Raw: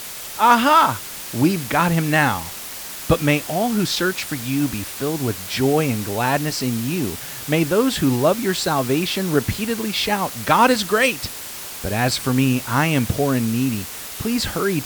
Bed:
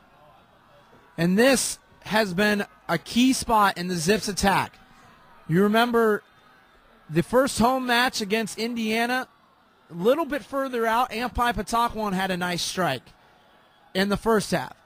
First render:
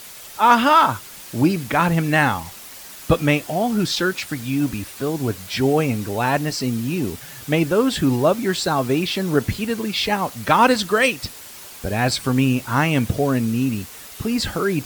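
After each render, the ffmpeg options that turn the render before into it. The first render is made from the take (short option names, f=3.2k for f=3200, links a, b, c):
-af "afftdn=nr=7:nf=-33"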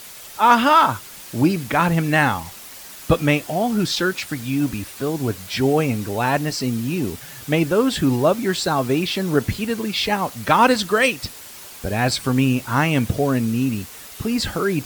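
-af anull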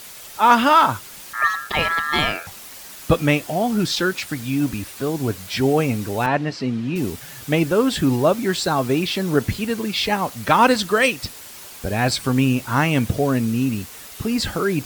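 -filter_complex "[0:a]asettb=1/sr,asplit=3[a][b][c];[a]atrim=end=1.334[d];[b]atrim=start=1.33:end=2.47,asetpts=PTS-STARTPTS,afade=t=in:d=0.004:c=qsin,afade=t=out:st=1.136:d=0.004:c=qsin,aeval=exprs='val(0)*sin(2*PI*1500*n/s)':c=same[e];[c]atrim=start=2.466[f];[d][e]acrossfade=d=0.004:c1=hsin:c2=qsin[g];[g][f]acrossfade=d=0.004:c1=qsin:c2=hsin,asettb=1/sr,asplit=3[h][i][j];[h]atrim=end=6.264[k];[i]atrim=start=6.26:end=6.96,asetpts=PTS-STARTPTS,afade=t=in:d=0.004:c=qsin,afade=t=out:st=0.696:d=0.004:c=qsin,highpass=110,lowpass=3.3k[l];[j]atrim=start=6.956[m];[k][l]acrossfade=d=0.004:c1=hsin:c2=qsin[n];[n][m]acrossfade=d=0.004:c1=qsin:c2=hsin"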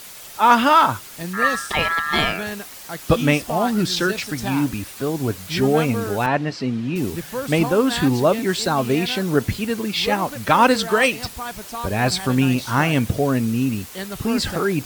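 -filter_complex "[1:a]volume=-8dB[a];[0:a][a]amix=inputs=2:normalize=0"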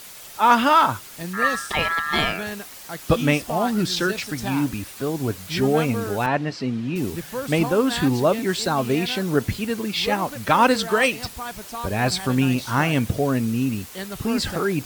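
-af "volume=-2dB"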